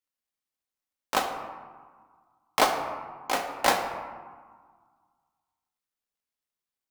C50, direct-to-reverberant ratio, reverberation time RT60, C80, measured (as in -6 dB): 6.5 dB, 3.5 dB, 1.6 s, 7.5 dB